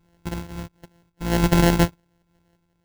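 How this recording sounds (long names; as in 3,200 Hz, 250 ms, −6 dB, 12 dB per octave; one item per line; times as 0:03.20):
a buzz of ramps at a fixed pitch in blocks of 256 samples
phaser sweep stages 8, 2.5 Hz, lowest notch 760–1,800 Hz
sample-and-hold tremolo
aliases and images of a low sample rate 1,200 Hz, jitter 0%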